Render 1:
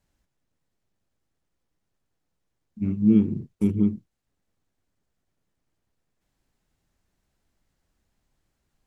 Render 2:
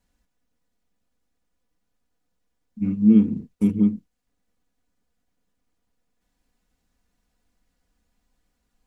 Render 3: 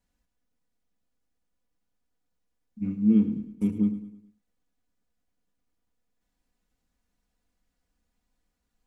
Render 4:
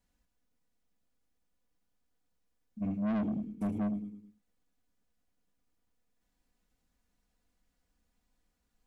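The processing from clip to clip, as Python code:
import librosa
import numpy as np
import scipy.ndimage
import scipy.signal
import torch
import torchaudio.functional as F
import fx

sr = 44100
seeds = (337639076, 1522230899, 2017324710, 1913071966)

y1 = x + 0.65 * np.pad(x, (int(4.1 * sr / 1000.0), 0))[:len(x)]
y2 = fx.echo_feedback(y1, sr, ms=106, feedback_pct=43, wet_db=-12.5)
y2 = y2 * 10.0 ** (-6.0 / 20.0)
y3 = 10.0 ** (-29.0 / 20.0) * np.tanh(y2 / 10.0 ** (-29.0 / 20.0))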